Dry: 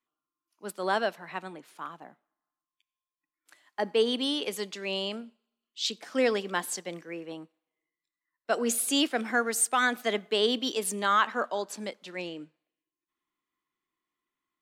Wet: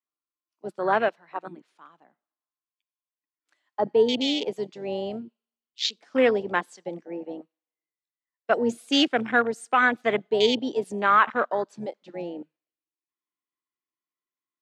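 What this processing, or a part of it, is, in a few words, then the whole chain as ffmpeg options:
over-cleaned archive recording: -af "highpass=170,lowpass=6400,afwtdn=0.0251,volume=5.5dB"

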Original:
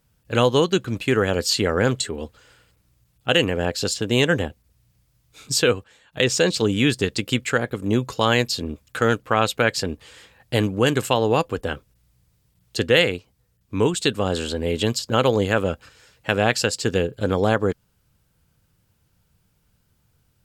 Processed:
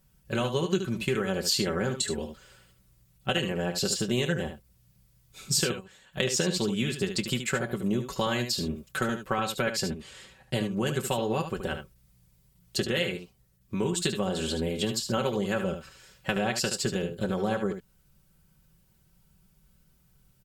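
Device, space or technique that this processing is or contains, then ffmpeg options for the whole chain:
ASMR close-microphone chain: -filter_complex "[0:a]lowshelf=frequency=190:gain=7,acompressor=threshold=-21dB:ratio=6,highshelf=frequency=7800:gain=6.5,asettb=1/sr,asplit=3[link_01][link_02][link_03];[link_01]atrim=end=9.844[link_04];[link_02]atrim=start=9.84:end=10.71,asetpts=PTS-STARTPTS,afade=type=in:duration=0.004:curve=qsin,afade=type=out:start_time=0.866:duration=0.004:curve=qsin,lowpass=11000[link_05];[link_03]atrim=start=10.706[link_06];[link_04][link_05]acrossfade=duration=0.004:curve1=hsin:curve2=qsin[link_07];[link_07][link_06]acrossfade=duration=0.004:curve1=qsin:curve2=hsin,aecho=1:1:5.3:0.76,aecho=1:1:25|74:0.15|0.376,volume=-5dB"

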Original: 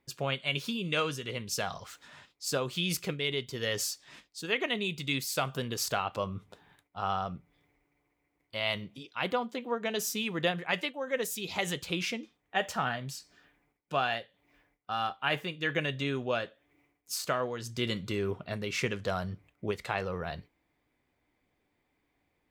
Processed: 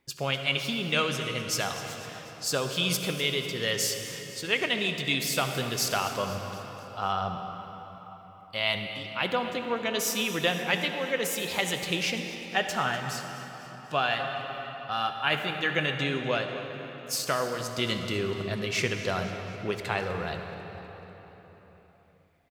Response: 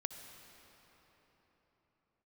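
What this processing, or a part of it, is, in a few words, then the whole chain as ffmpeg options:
swimming-pool hall: -filter_complex "[1:a]atrim=start_sample=2205[link_01];[0:a][link_01]afir=irnorm=-1:irlink=0,highshelf=frequency=2400:gain=9.5,highshelf=frequency=4100:gain=-7,asettb=1/sr,asplit=3[link_02][link_03][link_04];[link_02]atrim=end=14.194[link_05];[link_03]atrim=start=14.19:end=14.9,asetpts=PTS-STARTPTS,afade=type=in:duration=0.004:curve=qsin,afade=type=out:start_time=0.706:duration=0.004:curve=qsin,aecho=1:1:7.4:0.8,atrim=end_sample=31311[link_06];[link_04]atrim=start=14.896[link_07];[link_05][link_06]acrossfade=duration=0.004:curve1=hsin:curve2=qsin[link_08];[link_08][link_07]acrossfade=duration=0.004:curve1=qsin:curve2=hsin,aecho=1:1:248|496|744|992|1240:0.141|0.0805|0.0459|0.0262|0.0149,volume=3.5dB"

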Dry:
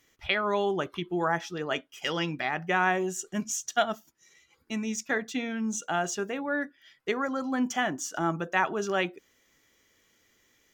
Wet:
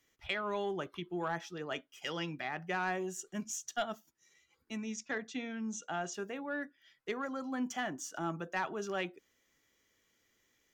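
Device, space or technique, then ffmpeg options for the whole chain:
one-band saturation: -filter_complex "[0:a]acrossover=split=270|3100[link_01][link_02][link_03];[link_02]asoftclip=type=tanh:threshold=-18dB[link_04];[link_01][link_04][link_03]amix=inputs=3:normalize=0,asplit=3[link_05][link_06][link_07];[link_05]afade=type=out:start_time=4.77:duration=0.02[link_08];[link_06]lowpass=frequency=7300:width=0.5412,lowpass=frequency=7300:width=1.3066,afade=type=in:start_time=4.77:duration=0.02,afade=type=out:start_time=6.13:duration=0.02[link_09];[link_07]afade=type=in:start_time=6.13:duration=0.02[link_10];[link_08][link_09][link_10]amix=inputs=3:normalize=0,volume=-8dB"

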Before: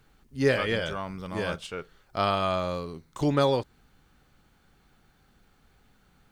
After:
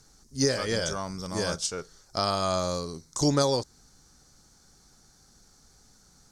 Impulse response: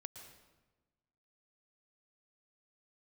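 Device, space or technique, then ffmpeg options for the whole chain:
over-bright horn tweeter: -af "lowpass=9300,highshelf=frequency=4000:width_type=q:width=3:gain=12.5,alimiter=limit=-12.5dB:level=0:latency=1:release=350,volume=1dB"

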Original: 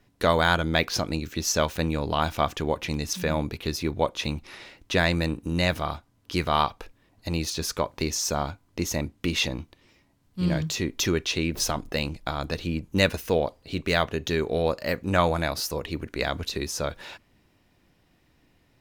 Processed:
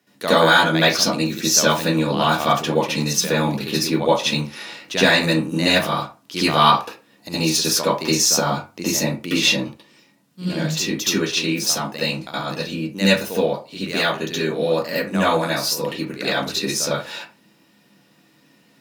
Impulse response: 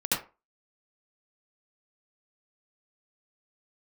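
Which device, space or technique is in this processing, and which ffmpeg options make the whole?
far laptop microphone: -filter_complex "[0:a]highshelf=frequency=4000:gain=7.5,bandreject=frequency=50:width_type=h:width=6,bandreject=frequency=100:width_type=h:width=6[link_01];[1:a]atrim=start_sample=2205[link_02];[link_01][link_02]afir=irnorm=-1:irlink=0,highpass=frequency=140:width=0.5412,highpass=frequency=140:width=1.3066,dynaudnorm=framelen=330:gausssize=21:maxgain=11.5dB,volume=-1dB"

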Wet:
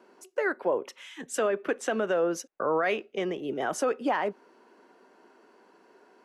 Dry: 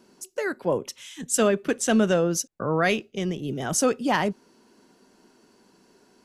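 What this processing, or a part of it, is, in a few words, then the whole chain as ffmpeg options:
DJ mixer with the lows and highs turned down: -filter_complex "[0:a]acrossover=split=330 2500:gain=0.0708 1 0.141[link_01][link_02][link_03];[link_01][link_02][link_03]amix=inputs=3:normalize=0,alimiter=limit=-22dB:level=0:latency=1:release=167,volume=4.5dB"

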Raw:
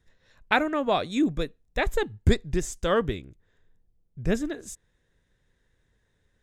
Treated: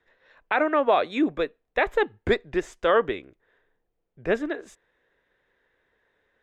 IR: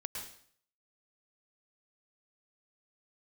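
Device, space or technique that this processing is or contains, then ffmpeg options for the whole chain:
DJ mixer with the lows and highs turned down: -filter_complex "[0:a]acrossover=split=340 3100:gain=0.0891 1 0.0708[link_01][link_02][link_03];[link_01][link_02][link_03]amix=inputs=3:normalize=0,alimiter=limit=-18dB:level=0:latency=1:release=37,volume=7.5dB"

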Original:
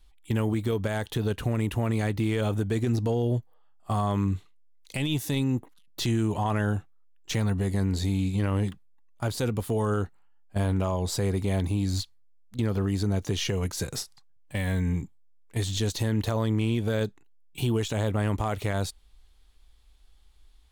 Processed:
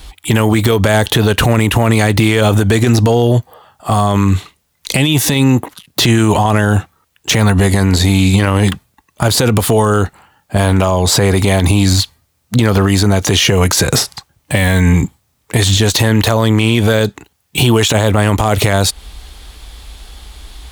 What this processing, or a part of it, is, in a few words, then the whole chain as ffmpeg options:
mastering chain: -filter_complex "[0:a]highpass=49,equalizer=frequency=650:width_type=o:width=0.77:gain=1.5,acrossover=split=700|3200|7600[link_01][link_02][link_03][link_04];[link_01]acompressor=threshold=-33dB:ratio=4[link_05];[link_02]acompressor=threshold=-37dB:ratio=4[link_06];[link_03]acompressor=threshold=-44dB:ratio=4[link_07];[link_04]acompressor=threshold=-46dB:ratio=4[link_08];[link_05][link_06][link_07][link_08]amix=inputs=4:normalize=0,acompressor=threshold=-39dB:ratio=2,alimiter=level_in=31.5dB:limit=-1dB:release=50:level=0:latency=1,volume=-1dB"

